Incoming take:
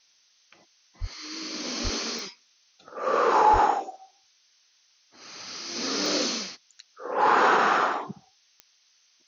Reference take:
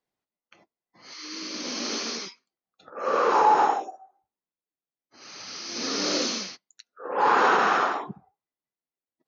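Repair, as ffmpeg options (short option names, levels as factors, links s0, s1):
-filter_complex "[0:a]adeclick=t=4,asplit=3[s0][s1][s2];[s0]afade=t=out:st=1:d=0.02[s3];[s1]highpass=f=140:w=0.5412,highpass=f=140:w=1.3066,afade=t=in:st=1:d=0.02,afade=t=out:st=1.12:d=0.02[s4];[s2]afade=t=in:st=1.12:d=0.02[s5];[s3][s4][s5]amix=inputs=3:normalize=0,asplit=3[s6][s7][s8];[s6]afade=t=out:st=1.83:d=0.02[s9];[s7]highpass=f=140:w=0.5412,highpass=f=140:w=1.3066,afade=t=in:st=1.83:d=0.02,afade=t=out:st=1.95:d=0.02[s10];[s8]afade=t=in:st=1.95:d=0.02[s11];[s9][s10][s11]amix=inputs=3:normalize=0,asplit=3[s12][s13][s14];[s12]afade=t=out:st=3.52:d=0.02[s15];[s13]highpass=f=140:w=0.5412,highpass=f=140:w=1.3066,afade=t=in:st=3.52:d=0.02,afade=t=out:st=3.64:d=0.02[s16];[s14]afade=t=in:st=3.64:d=0.02[s17];[s15][s16][s17]amix=inputs=3:normalize=0,afftdn=nr=30:nf=-64"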